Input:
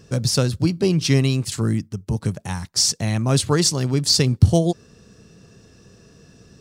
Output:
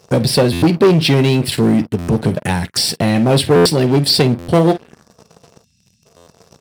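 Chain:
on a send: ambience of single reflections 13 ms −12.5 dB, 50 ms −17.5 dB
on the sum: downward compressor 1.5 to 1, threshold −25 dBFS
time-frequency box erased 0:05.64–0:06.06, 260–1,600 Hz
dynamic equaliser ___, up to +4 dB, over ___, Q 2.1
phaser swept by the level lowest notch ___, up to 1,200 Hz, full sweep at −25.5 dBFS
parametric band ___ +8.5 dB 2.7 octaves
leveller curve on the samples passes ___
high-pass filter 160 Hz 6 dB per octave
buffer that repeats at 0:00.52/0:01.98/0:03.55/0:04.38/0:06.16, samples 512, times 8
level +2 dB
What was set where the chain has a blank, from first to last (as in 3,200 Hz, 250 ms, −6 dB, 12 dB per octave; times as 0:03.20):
1,400 Hz, −50 dBFS, 260 Hz, 640 Hz, 3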